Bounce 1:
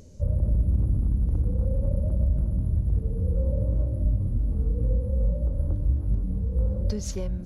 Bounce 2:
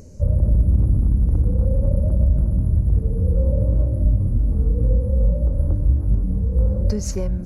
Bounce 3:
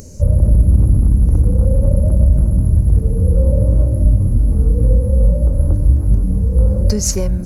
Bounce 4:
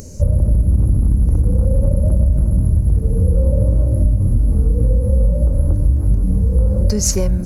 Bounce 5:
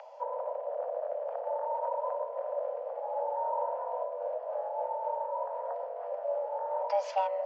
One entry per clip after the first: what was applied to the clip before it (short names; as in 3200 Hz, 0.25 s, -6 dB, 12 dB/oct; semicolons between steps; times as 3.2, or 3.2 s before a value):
bell 3400 Hz -15 dB 0.43 oct; gain +6.5 dB
high shelf 4300 Hz +12 dB; gain +5.5 dB
compressor, threshold -11 dBFS, peak gain reduction 6 dB; gain +1.5 dB
mistuned SSB +390 Hz 170–3600 Hz; gain -7.5 dB